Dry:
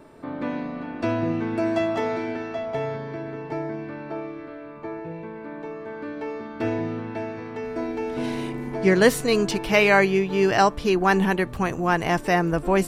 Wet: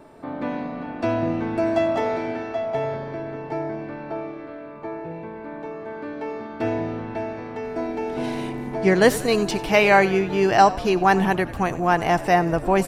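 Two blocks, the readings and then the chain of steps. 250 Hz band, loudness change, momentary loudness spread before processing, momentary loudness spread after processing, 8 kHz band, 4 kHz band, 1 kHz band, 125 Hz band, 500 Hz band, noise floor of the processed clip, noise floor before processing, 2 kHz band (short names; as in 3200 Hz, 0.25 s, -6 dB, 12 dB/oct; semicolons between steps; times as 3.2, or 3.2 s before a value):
+0.5 dB, +1.5 dB, 17 LU, 17 LU, 0.0 dB, 0.0 dB, +4.0 dB, +0.5 dB, +1.5 dB, -37 dBFS, -38 dBFS, +0.5 dB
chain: bell 750 Hz +6 dB 0.5 oct; frequency-shifting echo 92 ms, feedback 63%, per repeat -42 Hz, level -17.5 dB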